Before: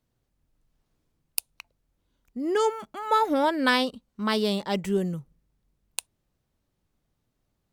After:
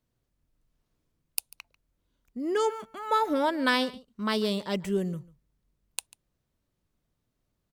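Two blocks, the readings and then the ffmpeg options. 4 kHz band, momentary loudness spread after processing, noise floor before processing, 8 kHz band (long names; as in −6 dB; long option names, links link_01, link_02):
−2.5 dB, 14 LU, −78 dBFS, −2.5 dB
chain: -filter_complex "[0:a]bandreject=frequency=810:width=12,asplit=2[link_01][link_02];[link_02]aecho=0:1:143:0.0891[link_03];[link_01][link_03]amix=inputs=2:normalize=0,volume=-2.5dB"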